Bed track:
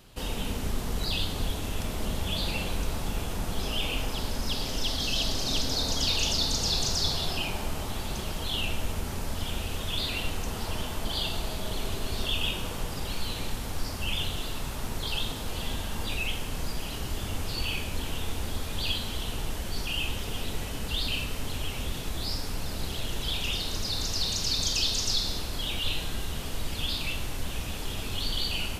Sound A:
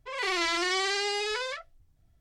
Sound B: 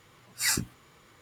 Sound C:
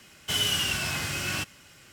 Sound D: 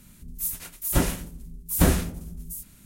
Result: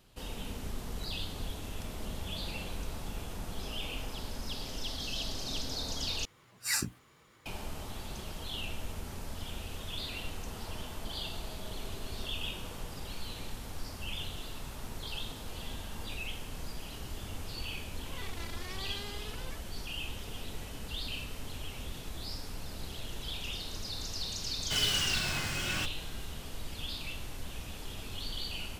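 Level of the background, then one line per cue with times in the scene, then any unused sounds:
bed track -8.5 dB
6.25 s: replace with B -4.5 dB
17.99 s: add A -14 dB + transformer saturation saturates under 2.1 kHz
24.42 s: add C -4 dB + median filter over 3 samples
not used: D

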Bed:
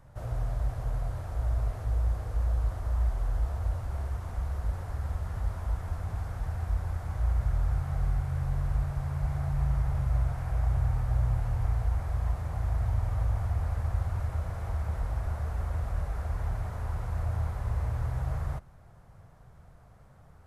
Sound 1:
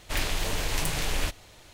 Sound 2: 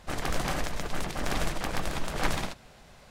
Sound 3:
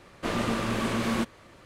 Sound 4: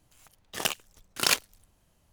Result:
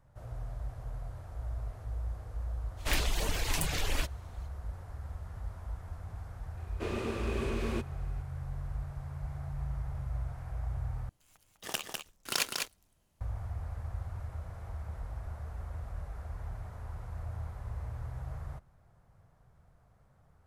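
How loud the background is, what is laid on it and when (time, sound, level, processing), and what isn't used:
bed -9 dB
2.76 s: add 1 -1 dB, fades 0.05 s + reverb removal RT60 1.2 s
6.57 s: add 3 -11.5 dB + small resonant body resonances 400/2500 Hz, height 14 dB, ringing for 40 ms
11.09 s: replace with 4 -7.5 dB + delay 201 ms -4.5 dB
not used: 2

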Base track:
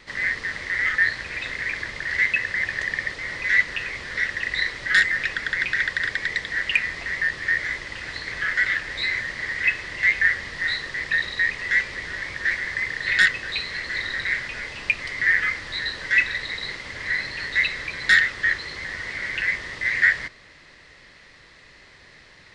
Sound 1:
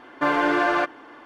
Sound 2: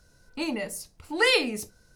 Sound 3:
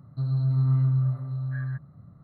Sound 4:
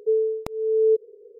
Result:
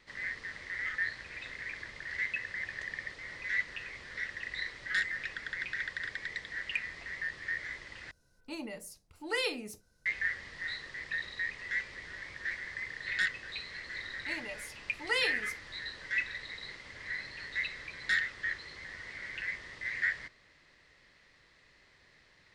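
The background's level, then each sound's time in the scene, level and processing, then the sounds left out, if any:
base track -13.5 dB
8.11 s: replace with 2 -11 dB
13.89 s: add 2 -9.5 dB + frequency weighting A
not used: 1, 3, 4

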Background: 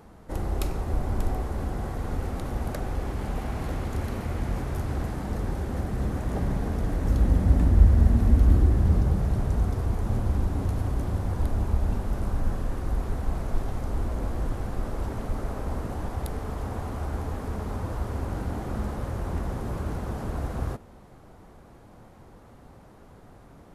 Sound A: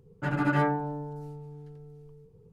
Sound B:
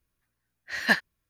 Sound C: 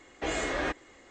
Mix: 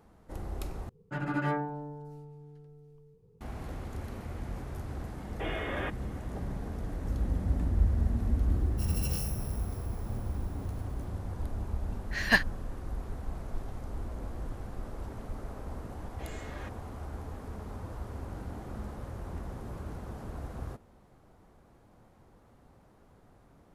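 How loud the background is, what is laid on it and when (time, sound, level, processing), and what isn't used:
background -9.5 dB
0.89 s: replace with A -5.5 dB
5.18 s: add C -4.5 dB + brick-wall FIR low-pass 3.7 kHz
8.56 s: add A -13.5 dB + bit-reversed sample order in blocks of 128 samples
11.43 s: add B -1.5 dB
15.97 s: add C -15.5 dB

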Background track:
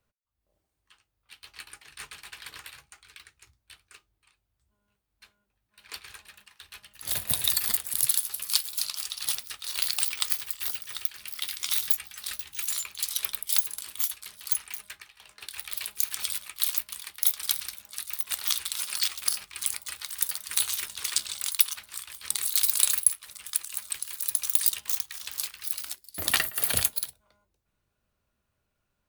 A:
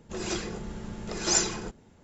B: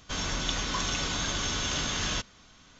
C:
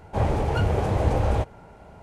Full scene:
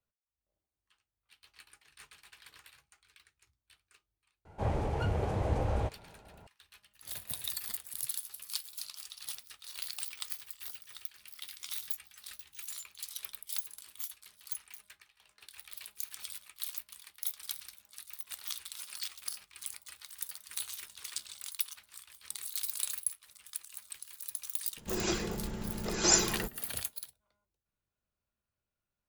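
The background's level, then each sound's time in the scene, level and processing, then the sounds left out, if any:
background track -12.5 dB
4.45 s: add C -9 dB
24.77 s: add A -0.5 dB
not used: B

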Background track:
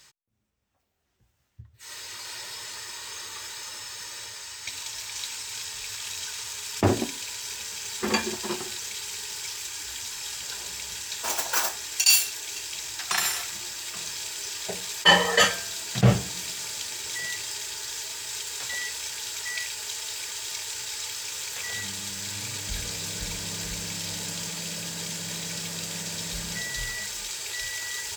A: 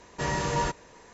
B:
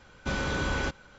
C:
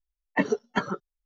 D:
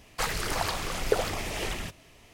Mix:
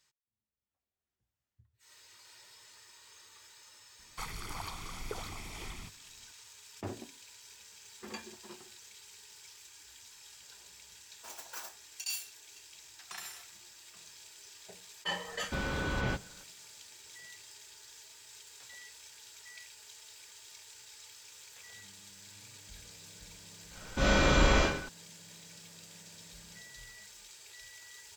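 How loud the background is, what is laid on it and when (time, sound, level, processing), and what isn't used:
background track -19 dB
3.99 s: add D -13.5 dB + comb 0.9 ms, depth 62%
15.26 s: add B -4.5 dB + low-pass 5.1 kHz
23.71 s: add B -1.5 dB + algorithmic reverb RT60 0.61 s, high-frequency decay 1×, DRR -6.5 dB
not used: A, C

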